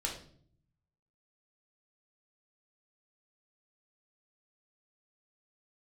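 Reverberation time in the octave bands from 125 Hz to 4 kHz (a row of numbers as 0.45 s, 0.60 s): 1.2 s, 0.90 s, 0.65 s, 0.45 s, 0.45 s, 0.45 s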